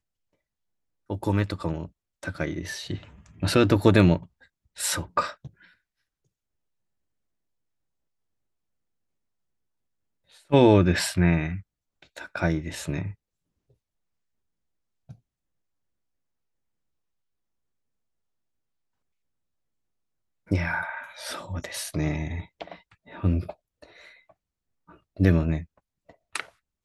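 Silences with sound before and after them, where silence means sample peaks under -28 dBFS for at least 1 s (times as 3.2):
5.3–10.52
13.09–20.51
23.5–25.2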